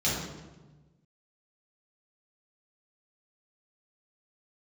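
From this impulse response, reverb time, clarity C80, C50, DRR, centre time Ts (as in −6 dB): 1.2 s, 3.5 dB, 0.5 dB, −8.0 dB, 70 ms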